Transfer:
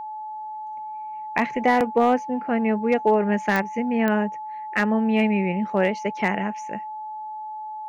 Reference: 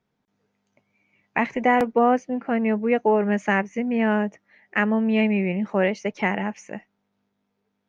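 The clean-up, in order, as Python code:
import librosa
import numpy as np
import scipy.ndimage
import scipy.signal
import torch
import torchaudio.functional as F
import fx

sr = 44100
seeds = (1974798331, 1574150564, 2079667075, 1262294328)

y = fx.fix_declip(x, sr, threshold_db=-10.0)
y = fx.fix_declick_ar(y, sr, threshold=10.0)
y = fx.notch(y, sr, hz=860.0, q=30.0)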